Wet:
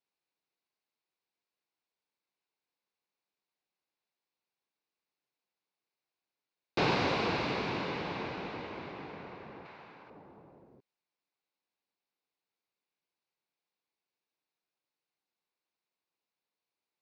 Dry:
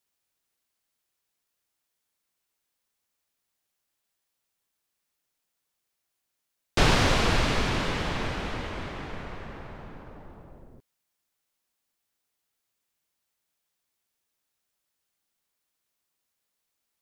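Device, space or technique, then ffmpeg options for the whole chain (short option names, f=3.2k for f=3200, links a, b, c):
kitchen radio: -filter_complex "[0:a]asettb=1/sr,asplit=3[a][b][c];[a]atrim=end=9.654[d];[b]atrim=start=9.65:end=10.1,asetpts=PTS-STARTPTS,afade=t=in:d=0.004:c=qsin,afade=t=out:st=0.446:d=0.004:c=qsin,tiltshelf=f=860:g=-8[e];[c]atrim=start=10.096[f];[d][e]acrossfade=d=0.004:c1=hsin:c2=qsin[g];[g][f]acrossfade=d=0.004:c1=qsin:c2=hsin,highpass=190,equalizer=f=240:t=q:w=4:g=-4,equalizer=f=620:t=q:w=4:g=-4,equalizer=f=1.3k:t=q:w=4:g=-6,equalizer=f=1.8k:t=q:w=4:g=-7,equalizer=f=3.2k:t=q:w=4:g=-9,lowpass=f=4.2k:w=0.5412,lowpass=f=4.2k:w=1.3066,volume=-2.5dB"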